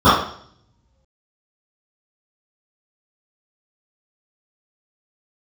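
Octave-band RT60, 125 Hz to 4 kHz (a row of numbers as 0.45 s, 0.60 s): 1.3 s, 0.65 s, 0.60 s, 0.55 s, 0.55 s, 0.65 s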